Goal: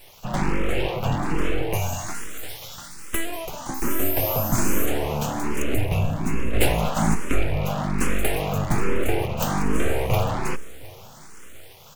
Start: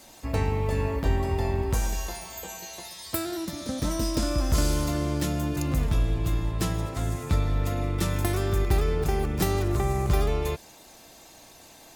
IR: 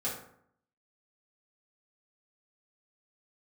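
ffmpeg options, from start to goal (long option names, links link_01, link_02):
-filter_complex "[0:a]asettb=1/sr,asplit=3[link_01][link_02][link_03];[link_01]atrim=end=3.744[link_04];[link_02]atrim=start=3.74:end=4.86,asetpts=PTS-STARTPTS,afade=type=in:duration=0.004:curve=qsin,afade=type=out:start_time=1.116:duration=0.004:curve=qsin,aeval=exprs='val(0)+0.0282*sin(2*PI*13000*n/s)':channel_layout=same[link_05];[link_03]atrim=start=4.856[link_06];[link_04][link_05]acrossfade=duration=0.004:curve1=hsin:curve2=qsin[link_07];[link_07][link_06]acrossfade=duration=0.004:curve1=qsin:curve2=hsin,asettb=1/sr,asplit=3[link_08][link_09][link_10];[link_08]atrim=end=6.534[link_11];[link_09]atrim=start=6.53:end=7.15,asetpts=PTS-STARTPTS,afade=type=in:duration=0.004:curve=qsin,afade=type=out:start_time=0.616:duration=0.004:curve=qsin,acontrast=50[link_12];[link_10]atrim=start=7.146[link_13];[link_11][link_12]acrossfade=duration=0.004:curve1=hsin:curve2=qsin[link_14];[link_14][link_13]acrossfade=duration=0.004:curve1=qsin:curve2=hsin,superequalizer=8b=1.58:12b=2:13b=0.251:14b=0.282,aeval=exprs='abs(val(0))':channel_layout=same,aecho=1:1:712|1424|2136:0.0708|0.0297|0.0125,asplit=2[link_15][link_16];[link_16]afreqshift=1.2[link_17];[link_15][link_17]amix=inputs=2:normalize=1,volume=7.5dB"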